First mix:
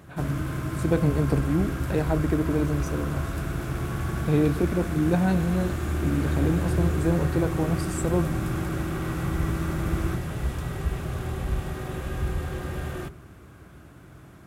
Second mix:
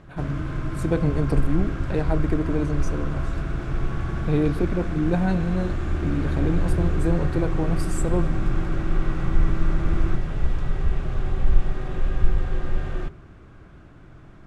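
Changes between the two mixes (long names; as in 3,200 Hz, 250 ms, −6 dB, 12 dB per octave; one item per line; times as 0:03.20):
background: add high-frequency loss of the air 110 metres
master: remove high-pass filter 53 Hz 24 dB per octave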